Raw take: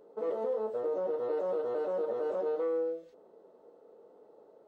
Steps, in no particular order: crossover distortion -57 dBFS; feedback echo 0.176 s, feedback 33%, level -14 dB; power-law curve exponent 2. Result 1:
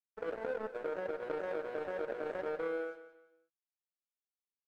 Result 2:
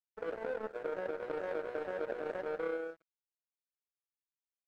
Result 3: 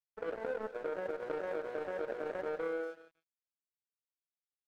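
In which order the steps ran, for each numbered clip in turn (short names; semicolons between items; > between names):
power-law curve > crossover distortion > feedback echo; feedback echo > power-law curve > crossover distortion; power-law curve > feedback echo > crossover distortion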